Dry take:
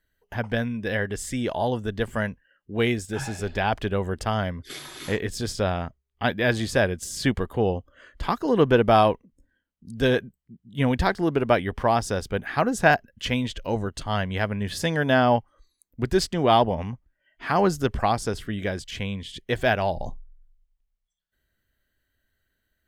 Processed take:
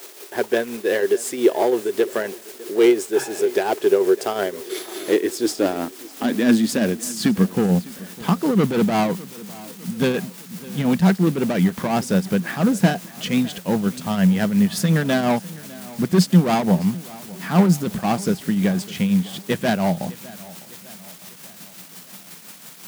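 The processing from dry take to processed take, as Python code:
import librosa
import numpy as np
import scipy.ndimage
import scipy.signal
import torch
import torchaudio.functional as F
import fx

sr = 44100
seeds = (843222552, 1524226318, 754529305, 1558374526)

p1 = fx.high_shelf(x, sr, hz=10000.0, db=10.5)
p2 = fx.quant_dither(p1, sr, seeds[0], bits=6, dither='triangular')
p3 = p1 + (p2 * librosa.db_to_amplitude(-3.0))
p4 = np.clip(p3, -10.0 ** (-16.0 / 20.0), 10.0 ** (-16.0 / 20.0))
p5 = fx.tremolo_shape(p4, sr, shape='triangle', hz=5.7, depth_pct=60)
p6 = fx.quant_float(p5, sr, bits=2)
p7 = fx.filter_sweep_highpass(p6, sr, from_hz=380.0, to_hz=180.0, start_s=4.77, end_s=7.7, q=7.1)
y = p7 + fx.echo_feedback(p7, sr, ms=604, feedback_pct=52, wet_db=-20, dry=0)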